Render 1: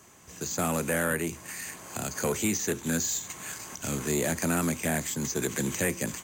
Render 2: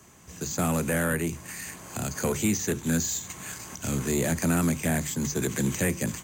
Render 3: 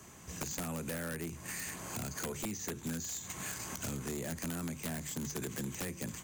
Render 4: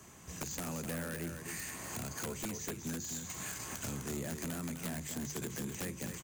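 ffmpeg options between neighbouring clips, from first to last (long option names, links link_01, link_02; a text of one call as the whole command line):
ffmpeg -i in.wav -filter_complex "[0:a]bandreject=frequency=50:width_type=h:width=6,bandreject=frequency=100:width_type=h:width=6,bandreject=frequency=150:width_type=h:width=6,acrossover=split=210[link_01][link_02];[link_01]acontrast=89[link_03];[link_03][link_02]amix=inputs=2:normalize=0" out.wav
ffmpeg -i in.wav -af "acompressor=threshold=-36dB:ratio=8,aeval=exprs='(mod(29.9*val(0)+1,2)-1)/29.9':channel_layout=same" out.wav
ffmpeg -i in.wav -af "aecho=1:1:255:0.447,volume=-1.5dB" out.wav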